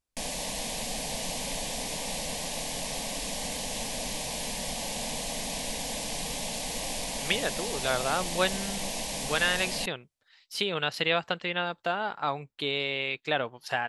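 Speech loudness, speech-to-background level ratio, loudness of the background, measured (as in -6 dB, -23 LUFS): -30.0 LUFS, 2.5 dB, -32.5 LUFS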